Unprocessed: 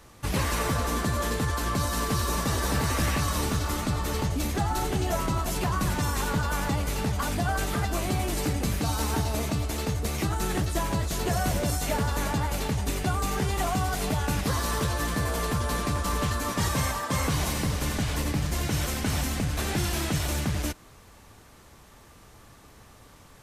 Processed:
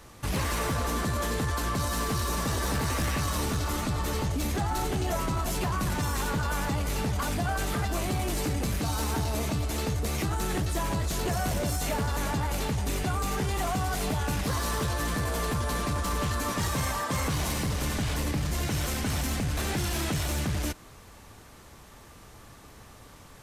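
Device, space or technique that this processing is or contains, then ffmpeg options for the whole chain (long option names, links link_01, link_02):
soft clipper into limiter: -af "asoftclip=type=tanh:threshold=-21dB,alimiter=level_in=0.5dB:limit=-24dB:level=0:latency=1,volume=-0.5dB,volume=2dB"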